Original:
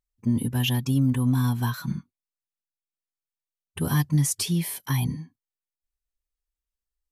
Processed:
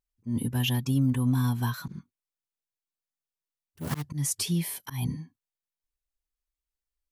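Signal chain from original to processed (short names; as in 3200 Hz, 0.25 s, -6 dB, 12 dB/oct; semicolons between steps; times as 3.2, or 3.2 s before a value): 1.85–4.04 self-modulated delay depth 0.5 ms; auto swell 0.146 s; gain -2.5 dB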